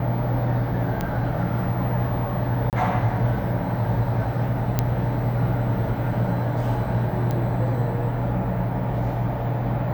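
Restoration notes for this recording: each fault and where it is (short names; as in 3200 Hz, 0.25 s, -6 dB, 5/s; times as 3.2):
1.01 pop -12 dBFS
2.7–2.73 gap 28 ms
4.79 pop -6 dBFS
7.31 pop -14 dBFS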